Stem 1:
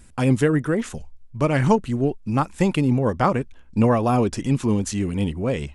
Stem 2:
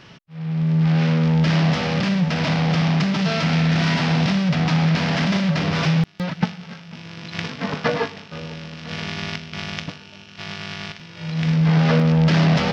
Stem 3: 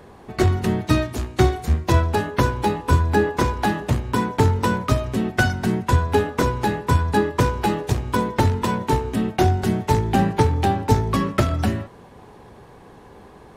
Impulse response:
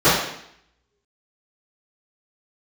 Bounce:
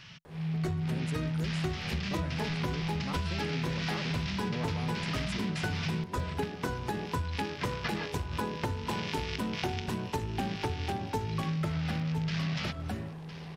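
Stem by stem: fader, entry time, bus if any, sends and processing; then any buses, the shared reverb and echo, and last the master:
-12.5 dB, 0.70 s, no send, no echo send, sustainer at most 110 dB/s
-5.0 dB, 0.00 s, no send, echo send -22.5 dB, EQ curve 160 Hz 0 dB, 330 Hz -15 dB, 2400 Hz +3 dB
-7.0 dB, 0.25 s, no send, echo send -6.5 dB, dry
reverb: off
echo: echo 1.009 s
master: compressor 6:1, threshold -30 dBFS, peak gain reduction 14.5 dB

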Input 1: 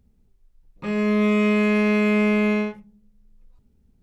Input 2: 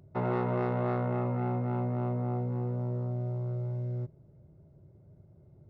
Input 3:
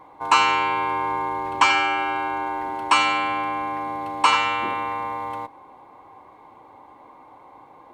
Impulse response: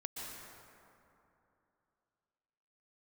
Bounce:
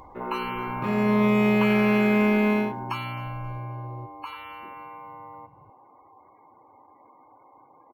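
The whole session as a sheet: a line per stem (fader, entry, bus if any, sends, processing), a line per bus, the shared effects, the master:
-1.5 dB, 0.00 s, no send, no echo send, gate -50 dBFS, range -27 dB; upward compressor, threshold -30 dBFS
-1.5 dB, 0.00 s, no send, no echo send, endless phaser -0.47 Hz
2.92 s -0.5 dB -> 3.47 s -7 dB, 0.00 s, no send, echo send -18.5 dB, spectral gate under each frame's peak -20 dB strong; compressor 2.5:1, threshold -35 dBFS, peak gain reduction 15 dB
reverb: off
echo: feedback echo 0.266 s, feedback 34%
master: decimation joined by straight lines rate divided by 3×

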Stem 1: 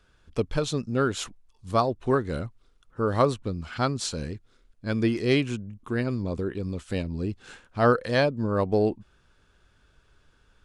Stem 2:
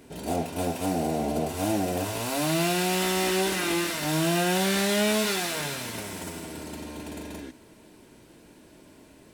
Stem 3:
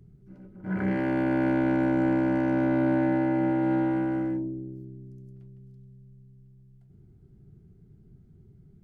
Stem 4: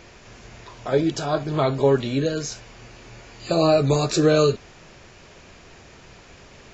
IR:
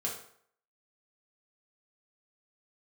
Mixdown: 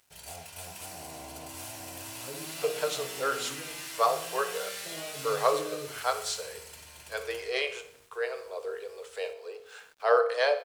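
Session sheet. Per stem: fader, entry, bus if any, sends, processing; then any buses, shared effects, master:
-5.5 dB, 2.25 s, no bus, send -5.5 dB, echo send -13.5 dB, octaver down 1 oct, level -5 dB; expander -56 dBFS; steep high-pass 430 Hz 72 dB/oct
-1.0 dB, 0.00 s, bus A, no send, no echo send, passive tone stack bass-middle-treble 10-0-10; notch 3700 Hz, Q 17
-12.0 dB, 0.00 s, bus A, no send, no echo send, ladder low-pass 1100 Hz, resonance 85%
-17.5 dB, 1.35 s, bus A, no send, echo send -12 dB, dry
bus A: 0.0 dB, bell 210 Hz -12 dB 0.21 oct; compressor 3:1, threshold -39 dBFS, peak gain reduction 9.5 dB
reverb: on, RT60 0.60 s, pre-delay 3 ms
echo: feedback echo 62 ms, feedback 50%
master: HPF 56 Hz; sample gate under -57 dBFS

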